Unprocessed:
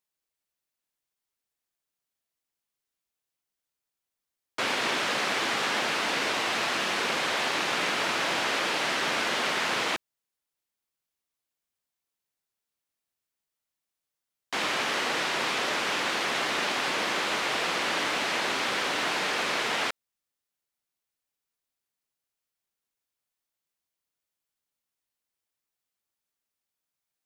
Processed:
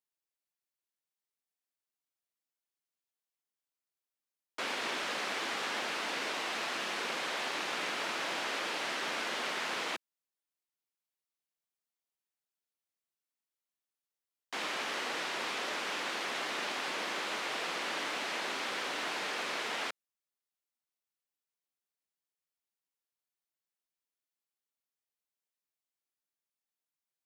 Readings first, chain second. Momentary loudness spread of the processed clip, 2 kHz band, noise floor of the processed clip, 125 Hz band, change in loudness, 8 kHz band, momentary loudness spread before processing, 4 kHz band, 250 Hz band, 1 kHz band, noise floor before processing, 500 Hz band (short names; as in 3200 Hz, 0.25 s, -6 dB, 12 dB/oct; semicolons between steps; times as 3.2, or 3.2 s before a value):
2 LU, -8.0 dB, under -85 dBFS, -13.0 dB, -8.0 dB, -8.0 dB, 2 LU, -8.0 dB, -9.0 dB, -8.0 dB, under -85 dBFS, -8.0 dB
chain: HPF 190 Hz 12 dB/oct; gain -8 dB